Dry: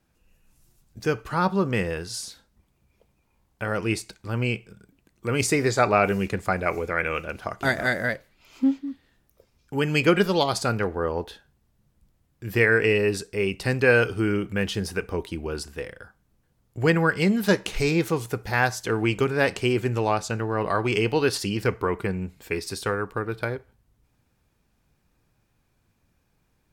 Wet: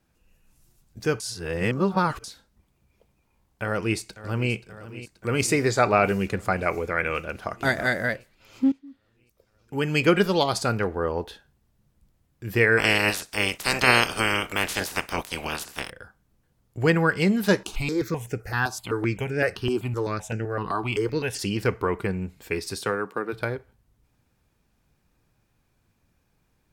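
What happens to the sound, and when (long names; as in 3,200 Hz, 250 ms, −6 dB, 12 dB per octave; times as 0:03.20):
0:01.20–0:02.24: reverse
0:03.63–0:04.52: delay throw 530 ms, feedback 75%, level −15 dB
0:08.72–0:10.09: fade in, from −16.5 dB
0:12.77–0:15.89: ceiling on every frequency bin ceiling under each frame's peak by 30 dB
0:17.63–0:21.39: step-sequenced phaser 7.8 Hz 530–3,900 Hz
0:22.76–0:23.32: high-pass filter 96 Hz → 220 Hz 24 dB per octave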